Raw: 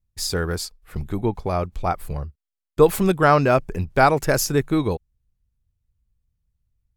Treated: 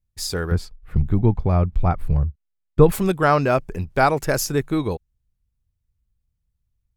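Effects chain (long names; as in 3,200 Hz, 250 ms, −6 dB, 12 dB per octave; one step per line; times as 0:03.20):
0:00.51–0:02.92: bass and treble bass +12 dB, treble −12 dB
level −1.5 dB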